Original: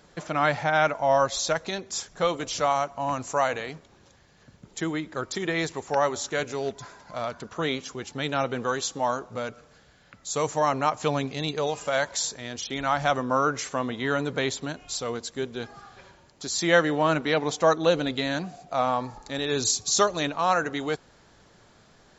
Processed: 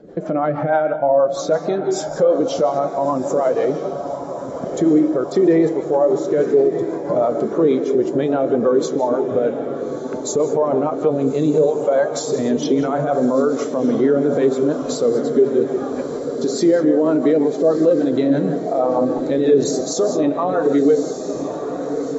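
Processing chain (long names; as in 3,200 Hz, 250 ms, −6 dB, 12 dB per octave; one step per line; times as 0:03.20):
parametric band 390 Hz +13.5 dB 2.6 octaves
downward compressor 3 to 1, threshold −31 dBFS, peak gain reduction 19 dB
reverb whose tail is shaped and stops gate 220 ms rising, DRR 9 dB
rotating-speaker cabinet horn 6.3 Hz
flanger 0.58 Hz, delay 9.1 ms, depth 6.7 ms, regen +75%
feedback delay with all-pass diffusion 1,241 ms, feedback 68%, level −8 dB
boost into a limiter +27.5 dB
every bin expanded away from the loudest bin 1.5 to 1
level −4 dB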